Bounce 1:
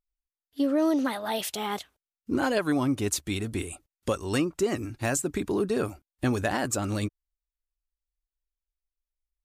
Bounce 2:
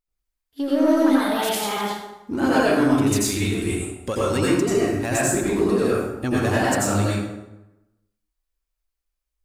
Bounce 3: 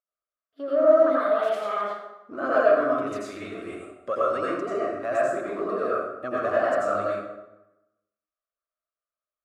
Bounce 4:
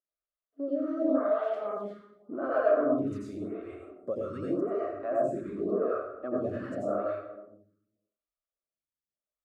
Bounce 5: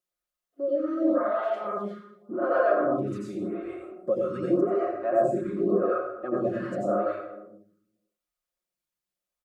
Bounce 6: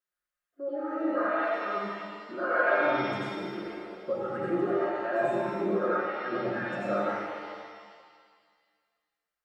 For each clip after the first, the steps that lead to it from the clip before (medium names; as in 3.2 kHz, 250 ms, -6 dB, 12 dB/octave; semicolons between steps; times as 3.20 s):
in parallel at -6 dB: hard clipper -27 dBFS, distortion -8 dB; on the sum: plate-style reverb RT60 0.98 s, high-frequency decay 0.65×, pre-delay 75 ms, DRR -7 dB; trim -2.5 dB
two resonant band-passes 880 Hz, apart 0.94 oct; trim +6.5 dB
tilt shelf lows +10 dB, about 630 Hz; lamp-driven phase shifter 0.87 Hz; trim -3 dB
comb 5.6 ms, depth 90%; trim +3 dB
peaking EQ 1.6 kHz +13 dB 0.78 oct; pitch-shifted reverb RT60 1.8 s, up +7 st, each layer -8 dB, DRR 1.5 dB; trim -7 dB